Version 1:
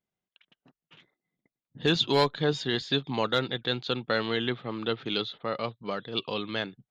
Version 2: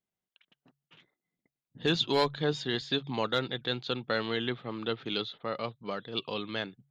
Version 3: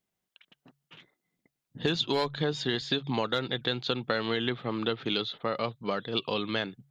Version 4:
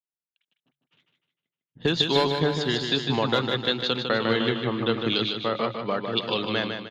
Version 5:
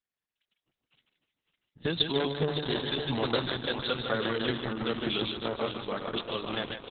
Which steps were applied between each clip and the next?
de-hum 70.24 Hz, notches 2; trim -3 dB
compression, threshold -31 dBFS, peak gain reduction 9.5 dB; trim +6.5 dB
on a send: feedback delay 153 ms, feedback 56%, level -4.5 dB; on the sum: three bands expanded up and down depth 70%; trim +3.5 dB
on a send: delay 550 ms -8 dB; on the sum: trim -5 dB; Opus 6 kbps 48 kHz

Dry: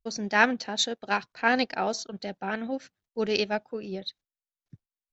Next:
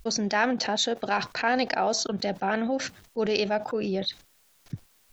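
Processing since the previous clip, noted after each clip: dynamic bell 690 Hz, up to +5 dB, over -38 dBFS, Q 1.2; level flattener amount 70%; trim -7 dB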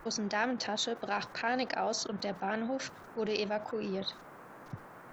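band noise 110–1500 Hz -44 dBFS; trim -7.5 dB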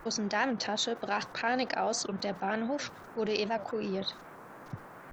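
warped record 78 rpm, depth 160 cents; trim +2 dB

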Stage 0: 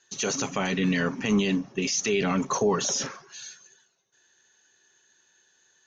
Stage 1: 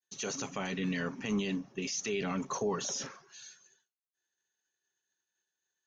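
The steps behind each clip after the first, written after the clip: expander -54 dBFS; trim -9 dB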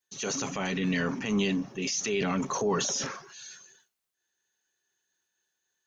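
transient shaper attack -4 dB, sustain +6 dB; trim +5.5 dB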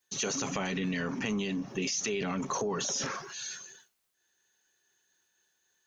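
compression 10:1, threshold -35 dBFS, peak gain reduction 12.5 dB; trim +6 dB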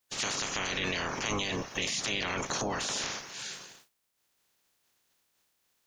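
spectral peaks clipped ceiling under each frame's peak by 25 dB

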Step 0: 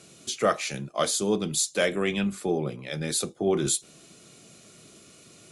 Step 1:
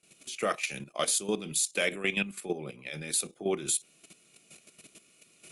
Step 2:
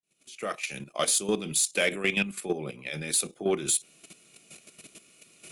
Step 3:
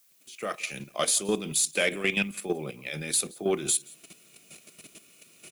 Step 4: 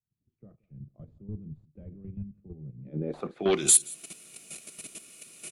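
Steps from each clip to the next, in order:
gate with hold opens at -42 dBFS; fifteen-band graphic EQ 100 Hz -10 dB, 2.5 kHz +10 dB, 10 kHz +9 dB; level held to a coarse grid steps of 12 dB; trim -3 dB
fade-in on the opening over 1.12 s; in parallel at -4 dB: saturation -24.5 dBFS, distortion -13 dB
added noise blue -63 dBFS; delay 174 ms -24 dB
hard clipper -21 dBFS, distortion -15 dB; low-pass sweep 100 Hz -> 10 kHz, 2.73–3.72 s; trim +2.5 dB

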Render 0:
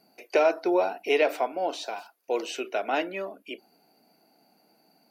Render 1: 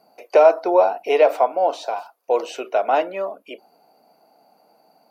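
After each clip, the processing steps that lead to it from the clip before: high-order bell 770 Hz +10 dB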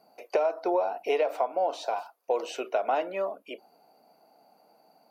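compression 12:1, threshold -18 dBFS, peak gain reduction 11.5 dB; trim -4 dB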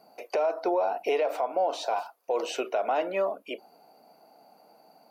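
peak limiter -22 dBFS, peak gain reduction 8 dB; trim +4 dB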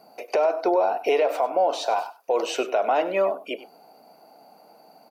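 delay 98 ms -15.5 dB; trim +5 dB

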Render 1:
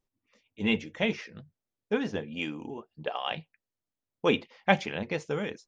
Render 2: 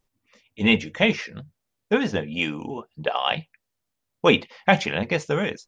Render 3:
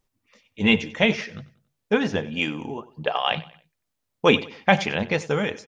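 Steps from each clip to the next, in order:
peaking EQ 330 Hz -4 dB 1.1 oct; loudness maximiser +10.5 dB; trim -1 dB
feedback delay 93 ms, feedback 37%, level -18.5 dB

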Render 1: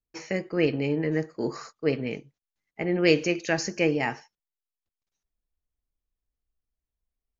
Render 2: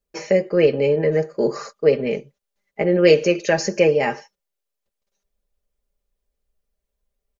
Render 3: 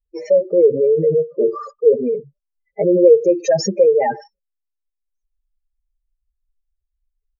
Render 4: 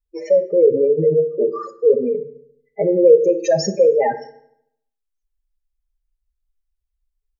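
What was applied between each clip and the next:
peaking EQ 520 Hz +14.5 dB 0.47 oct; comb 5 ms; in parallel at -1.5 dB: compression, threshold -26 dBFS, peak gain reduction 15 dB
spectral contrast enhancement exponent 3.2; trim +4 dB
FDN reverb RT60 0.74 s, low-frequency decay 1.05×, high-frequency decay 0.75×, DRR 9.5 dB; trim -1 dB

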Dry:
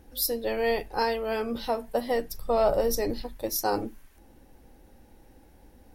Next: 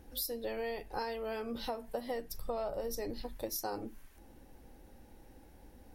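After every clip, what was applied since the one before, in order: compression 6:1, threshold -33 dBFS, peak gain reduction 14 dB; trim -2 dB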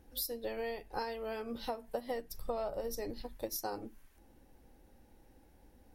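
upward expansion 1.5:1, over -46 dBFS; trim +1 dB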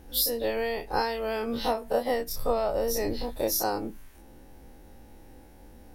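every event in the spectrogram widened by 60 ms; trim +7.5 dB

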